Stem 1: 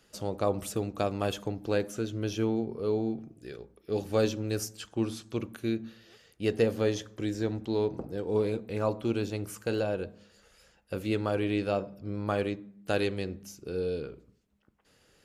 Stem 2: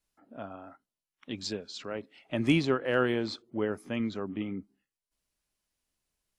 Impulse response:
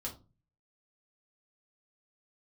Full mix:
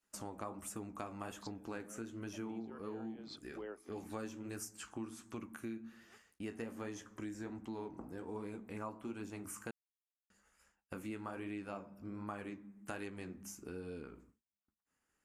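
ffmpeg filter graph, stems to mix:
-filter_complex "[0:a]agate=range=-33dB:threshold=-52dB:ratio=3:detection=peak,equalizer=f=125:t=o:w=1:g=-8,equalizer=f=250:t=o:w=1:g=6,equalizer=f=500:t=o:w=1:g=-9,equalizer=f=1k:t=o:w=1:g=8,equalizer=f=2k:t=o:w=1:g=4,equalizer=f=4k:t=o:w=1:g=-11,equalizer=f=8k:t=o:w=1:g=8,flanger=delay=10:depth=8.8:regen=-51:speed=1.3:shape=sinusoidal,volume=2dB,asplit=3[a][b][c];[a]atrim=end=9.71,asetpts=PTS-STARTPTS,afade=t=out:st=9.706:d=0.004:c=hsin[d];[b]atrim=start=9.71:end=10.3,asetpts=PTS-STARTPTS,volume=0[e];[c]atrim=start=10.3,asetpts=PTS-STARTPTS,afade=t=in:d=0.004:c=hsin[f];[d][e][f]concat=n=3:v=0:a=1,asplit=2[g][h];[1:a]highpass=f=280:w=0.5412,highpass=f=280:w=1.3066,volume=-4.5dB[i];[h]apad=whole_len=281572[j];[i][j]sidechaincompress=threshold=-51dB:ratio=5:attack=16:release=106[k];[g][k]amix=inputs=2:normalize=0,acompressor=threshold=-45dB:ratio=3"

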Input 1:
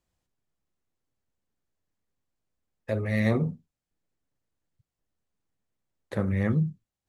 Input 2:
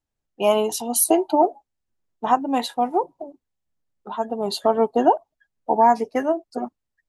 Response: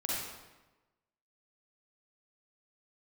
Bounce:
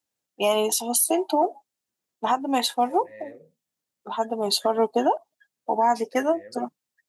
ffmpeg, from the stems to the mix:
-filter_complex "[0:a]asplit=3[a][b][c];[a]bandpass=f=530:t=q:w=8,volume=0dB[d];[b]bandpass=f=1.84k:t=q:w=8,volume=-6dB[e];[c]bandpass=f=2.48k:t=q:w=8,volume=-9dB[f];[d][e][f]amix=inputs=3:normalize=0,volume=-8dB[g];[1:a]highpass=170,highshelf=f=2.5k:g=9.5,volume=-1dB[h];[g][h]amix=inputs=2:normalize=0,alimiter=limit=-11.5dB:level=0:latency=1:release=143"

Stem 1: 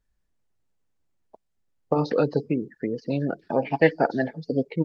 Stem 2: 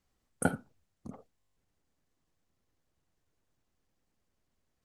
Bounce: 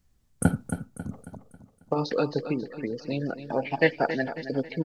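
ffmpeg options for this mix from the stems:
-filter_complex "[0:a]highshelf=f=2.2k:g=10.5,volume=2.5dB,asplit=2[a][b];[b]volume=-18.5dB[c];[1:a]bass=f=250:g=13,treble=f=4k:g=4,volume=0.5dB,asplit=3[d][e][f];[e]volume=-9dB[g];[f]apad=whole_len=213463[h];[a][h]sidechaingate=range=-7dB:threshold=-58dB:ratio=16:detection=peak[i];[c][g]amix=inputs=2:normalize=0,aecho=0:1:272|544|816|1088|1360|1632:1|0.44|0.194|0.0852|0.0375|0.0165[j];[i][d][j]amix=inputs=3:normalize=0"

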